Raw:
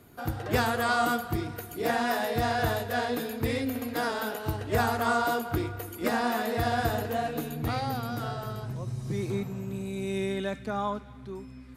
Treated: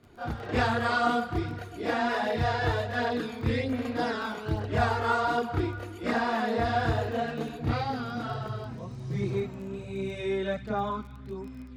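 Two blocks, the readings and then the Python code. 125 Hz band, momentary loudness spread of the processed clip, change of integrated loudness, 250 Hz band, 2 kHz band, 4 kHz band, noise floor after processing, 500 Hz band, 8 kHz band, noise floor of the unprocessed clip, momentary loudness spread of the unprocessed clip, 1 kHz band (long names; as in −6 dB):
+1.0 dB, 10 LU, 0.0 dB, 0.0 dB, 0.0 dB, −1.0 dB, −43 dBFS, 0.0 dB, −9.5 dB, −45 dBFS, 9 LU, 0.0 dB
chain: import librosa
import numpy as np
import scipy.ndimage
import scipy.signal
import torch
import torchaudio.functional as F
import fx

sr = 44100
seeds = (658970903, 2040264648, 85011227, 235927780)

y = scipy.signal.sosfilt(scipy.signal.butter(2, 4700.0, 'lowpass', fs=sr, output='sos'), x)
y = fx.chorus_voices(y, sr, voices=2, hz=0.65, base_ms=30, depth_ms=2.5, mix_pct=65)
y = fx.dmg_crackle(y, sr, seeds[0], per_s=20.0, level_db=-44.0)
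y = y * 10.0 ** (3.0 / 20.0)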